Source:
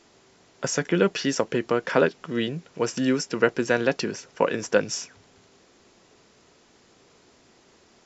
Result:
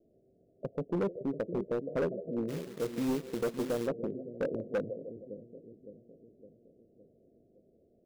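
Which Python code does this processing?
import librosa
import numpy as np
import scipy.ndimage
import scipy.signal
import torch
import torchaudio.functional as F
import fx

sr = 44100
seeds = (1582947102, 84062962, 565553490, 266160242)

y = scipy.signal.sosfilt(scipy.signal.butter(16, 670.0, 'lowpass', fs=sr, output='sos'), x)
y = fx.echo_split(y, sr, split_hz=440.0, low_ms=561, high_ms=156, feedback_pct=52, wet_db=-11.5)
y = fx.quant_companded(y, sr, bits=4, at=(2.48, 3.86), fade=0.02)
y = np.clip(10.0 ** (19.5 / 20.0) * y, -1.0, 1.0) / 10.0 ** (19.5 / 20.0)
y = y * librosa.db_to_amplitude(-7.0)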